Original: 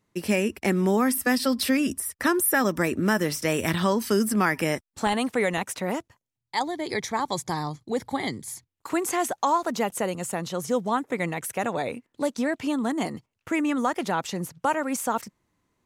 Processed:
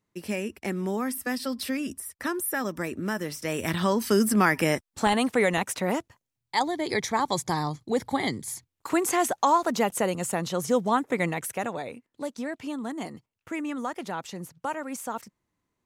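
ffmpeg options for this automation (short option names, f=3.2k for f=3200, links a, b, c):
-af "volume=1.5dB,afade=t=in:st=3.37:d=0.9:silence=0.375837,afade=t=out:st=11.23:d=0.62:silence=0.375837"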